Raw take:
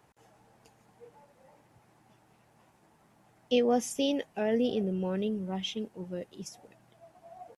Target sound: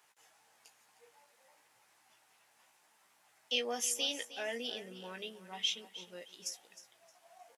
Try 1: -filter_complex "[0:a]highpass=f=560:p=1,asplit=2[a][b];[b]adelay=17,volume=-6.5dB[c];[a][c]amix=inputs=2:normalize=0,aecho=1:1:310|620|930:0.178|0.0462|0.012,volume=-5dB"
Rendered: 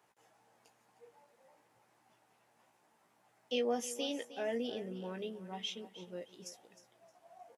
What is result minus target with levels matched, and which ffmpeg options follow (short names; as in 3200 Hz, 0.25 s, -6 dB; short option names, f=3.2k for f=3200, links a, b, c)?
1000 Hz band +3.5 dB
-filter_complex "[0:a]highpass=f=560:p=1,tiltshelf=f=950:g=-9,asplit=2[a][b];[b]adelay=17,volume=-6.5dB[c];[a][c]amix=inputs=2:normalize=0,aecho=1:1:310|620|930:0.178|0.0462|0.012,volume=-5dB"